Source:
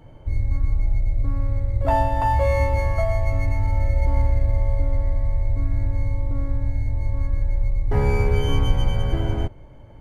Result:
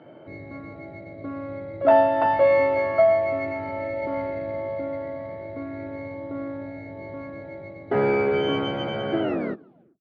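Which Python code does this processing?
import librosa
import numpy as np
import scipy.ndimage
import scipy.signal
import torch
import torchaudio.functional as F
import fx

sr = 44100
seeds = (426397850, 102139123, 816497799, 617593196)

y = fx.tape_stop_end(x, sr, length_s=0.8)
y = fx.cabinet(y, sr, low_hz=180.0, low_slope=24, high_hz=3700.0, hz=(350.0, 640.0, 950.0, 1400.0), db=(7, 8, -5, 7))
y = y * librosa.db_to_amplitude(2.0)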